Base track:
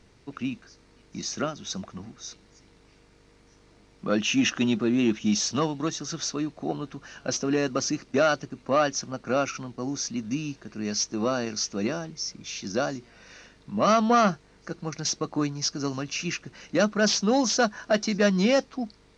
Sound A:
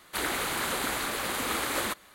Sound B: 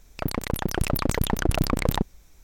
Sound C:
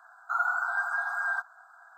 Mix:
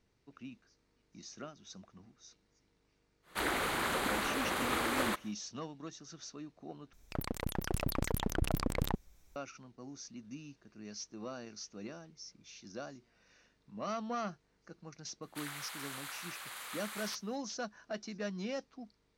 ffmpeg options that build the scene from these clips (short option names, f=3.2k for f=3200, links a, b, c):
-filter_complex "[1:a]asplit=2[a][b];[0:a]volume=-17.5dB[c];[a]highshelf=f=3.8k:g=-8.5[d];[b]highpass=990[e];[c]asplit=2[f][g];[f]atrim=end=6.934[h];[2:a]atrim=end=2.43,asetpts=PTS-STARTPTS,volume=-10dB[i];[g]atrim=start=9.356[j];[d]atrim=end=2.14,asetpts=PTS-STARTPTS,volume=-1.5dB,afade=t=in:d=0.1,afade=t=out:st=2.04:d=0.1,adelay=3220[k];[e]atrim=end=2.14,asetpts=PTS-STARTPTS,volume=-13dB,afade=t=in:d=0.004:c=hsin,afade=t=out:st=2.136:d=0.004:c=hsin,adelay=15220[l];[h][i]acrossfade=d=0.004:c1=hsin:c2=hsin[m];[m][j]acrossfade=d=0.004:c1=hsin:c2=hsin[n];[n][k][l]amix=inputs=3:normalize=0"